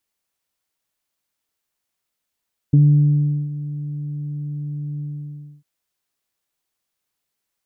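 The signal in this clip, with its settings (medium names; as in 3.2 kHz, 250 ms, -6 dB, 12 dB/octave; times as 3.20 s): synth note saw D3 24 dB/octave, low-pass 210 Hz, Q 1.1, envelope 0.5 oct, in 0.05 s, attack 8 ms, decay 0.75 s, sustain -16.5 dB, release 0.63 s, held 2.27 s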